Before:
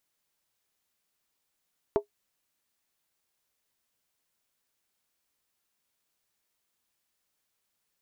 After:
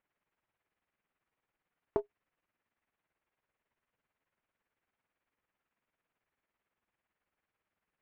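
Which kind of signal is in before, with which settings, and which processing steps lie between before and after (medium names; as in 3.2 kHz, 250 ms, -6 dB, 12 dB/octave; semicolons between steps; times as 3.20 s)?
skin hit, lowest mode 412 Hz, decay 0.11 s, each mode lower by 6 dB, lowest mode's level -16.5 dB
low-pass 2.4 kHz 24 dB/octave; tremolo 18 Hz, depth 61%; in parallel at -5 dB: one-sided clip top -38.5 dBFS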